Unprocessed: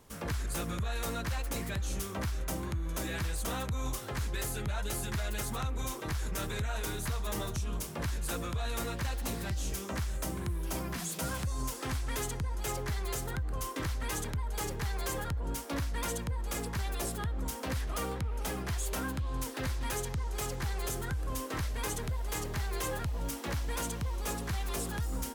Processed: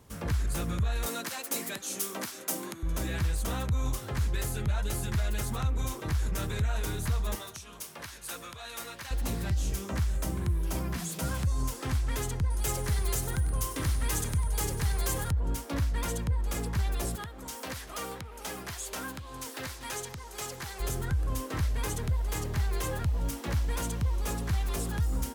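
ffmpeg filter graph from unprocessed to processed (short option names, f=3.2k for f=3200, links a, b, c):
-filter_complex "[0:a]asettb=1/sr,asplit=3[a][b][c];[a]atrim=end=1.064[d];[b]atrim=start=1.06:end=2.83,asetpts=PTS-STARTPTS,afade=t=in:d=0.004:c=qsin,afade=t=out:st=1.766:d=0.004:c=qsin,highpass=f=230:w=0.5412,highpass=f=230:w=1.3066,highshelf=f=4.5k:g=10.5[e];[c]atrim=start=2.826[f];[d][e]acrossfade=d=0.004:c1=hsin:c2=qsin[g];[g][f]acrossfade=d=0.004:c1=qsin:c2=hsin,asettb=1/sr,asplit=3[h][i][j];[h]atrim=end=7.354[k];[i]atrim=start=7.35:end=9.11,asetpts=PTS-STARTPTS,afade=t=in:d=0.004:c=qsin,afade=t=out:st=1.756:d=0.004:c=qsin,highpass=f=1.2k:p=1,bandreject=f=7.4k:w=18[l];[j]atrim=start=9.106[m];[k][l]acrossfade=d=0.004:c1=hsin:c2=qsin[n];[n][m]acrossfade=d=0.004:c1=qsin:c2=hsin,asettb=1/sr,asplit=3[o][p][q];[o]atrim=end=12.504[r];[p]atrim=start=12.5:end=15.31,asetpts=PTS-STARTPTS,afade=t=in:d=0.004:c=qsin,afade=t=out:st=2.806:d=0.004:c=qsin,highshelf=f=4.7k:g=7,aeval=exprs='val(0)+0.00447*sin(2*PI*9400*n/s)':c=same,aecho=1:1:98|196|294|392:0.211|0.0909|0.0391|0.0168,atrim=end_sample=123921[s];[q]atrim=start=15.306[t];[r][s]acrossfade=d=0.004:c1=hsin:c2=qsin[u];[u][t]acrossfade=d=0.004:c1=qsin:c2=hsin,asettb=1/sr,asplit=3[v][w][x];[v]atrim=end=17.154[y];[w]atrim=start=17.15:end=20.8,asetpts=PTS-STARTPTS,afade=t=in:d=0.004:c=qsin,afade=t=out:st=3.646:d=0.004:c=qsin,highpass=f=510:p=1,acrossover=split=7500[z][aa];[aa]acompressor=threshold=-51dB:ratio=4:attack=1:release=60[ab];[z][ab]amix=inputs=2:normalize=0,highshelf=f=7.5k:g=9.5[ac];[x]atrim=start=20.796[ad];[y][ac]acrossfade=d=0.004:c1=hsin:c2=qsin[ae];[ae][ad]acrossfade=d=0.004:c1=qsin:c2=hsin,highpass=56,lowshelf=f=130:g=11"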